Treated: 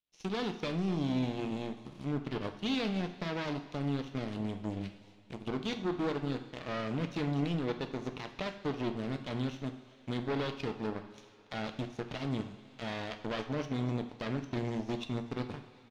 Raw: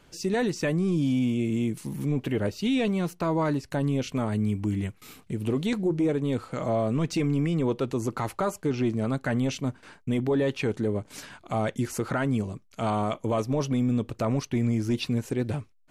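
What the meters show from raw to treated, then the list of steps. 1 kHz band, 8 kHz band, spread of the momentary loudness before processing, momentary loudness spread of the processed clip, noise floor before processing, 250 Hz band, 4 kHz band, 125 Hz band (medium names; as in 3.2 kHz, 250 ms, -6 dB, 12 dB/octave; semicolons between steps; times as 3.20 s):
-8.0 dB, -15.5 dB, 6 LU, 9 LU, -58 dBFS, -9.0 dB, -3.0 dB, -9.5 dB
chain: comb filter that takes the minimum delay 0.31 ms; on a send: delay 249 ms -18 dB; on the sum: power-law waveshaper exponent 2; resonant low-pass 4.5 kHz, resonance Q 1.7; in parallel at -5.5 dB: hysteresis with a dead band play -43 dBFS; on the sum: two-slope reverb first 0.56 s, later 2.6 s, from -17 dB, DRR 6 dB; tape noise reduction on one side only encoder only; trim -8 dB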